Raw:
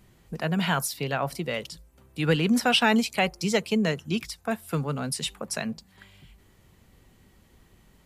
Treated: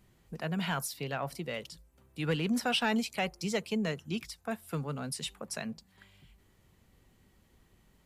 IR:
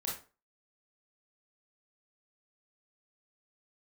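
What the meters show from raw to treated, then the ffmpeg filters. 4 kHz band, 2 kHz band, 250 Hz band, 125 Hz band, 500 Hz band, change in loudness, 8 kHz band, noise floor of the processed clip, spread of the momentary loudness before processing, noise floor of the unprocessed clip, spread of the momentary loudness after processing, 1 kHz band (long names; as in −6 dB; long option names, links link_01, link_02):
−8.0 dB, −8.0 dB, −7.5 dB, −7.5 dB, −8.0 dB, −8.0 dB, −7.5 dB, −67 dBFS, 13 LU, −60 dBFS, 12 LU, −8.0 dB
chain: -af "asoftclip=type=tanh:threshold=-12.5dB,volume=-7dB"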